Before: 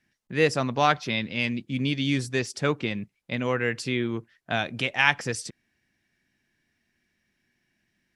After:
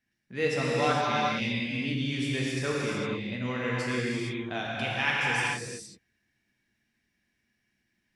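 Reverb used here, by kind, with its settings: gated-style reverb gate 490 ms flat, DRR -6 dB; trim -9.5 dB

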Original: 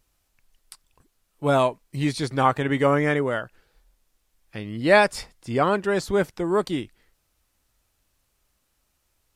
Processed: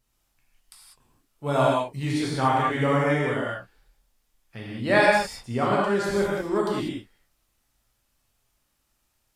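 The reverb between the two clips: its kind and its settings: gated-style reverb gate 220 ms flat, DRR -5 dB; trim -7 dB

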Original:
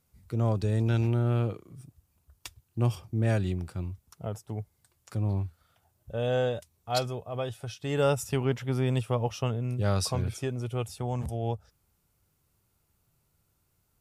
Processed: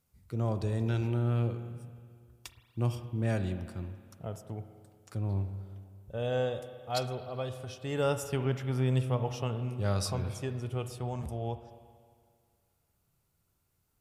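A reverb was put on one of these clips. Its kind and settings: spring tank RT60 2 s, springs 31/59 ms, chirp 25 ms, DRR 9 dB; trim -4 dB

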